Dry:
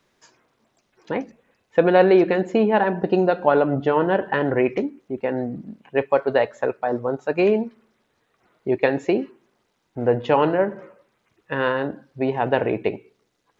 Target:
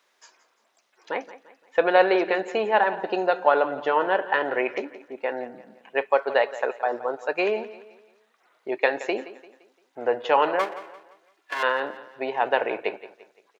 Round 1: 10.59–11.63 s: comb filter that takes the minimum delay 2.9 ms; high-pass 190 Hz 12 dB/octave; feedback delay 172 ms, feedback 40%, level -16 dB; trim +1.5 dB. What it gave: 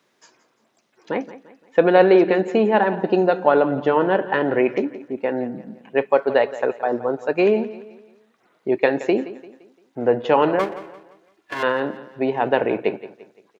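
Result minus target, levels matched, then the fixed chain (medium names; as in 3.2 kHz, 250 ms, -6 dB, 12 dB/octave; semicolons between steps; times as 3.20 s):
250 Hz band +7.0 dB
10.59–11.63 s: comb filter that takes the minimum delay 2.9 ms; high-pass 630 Hz 12 dB/octave; feedback delay 172 ms, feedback 40%, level -16 dB; trim +1.5 dB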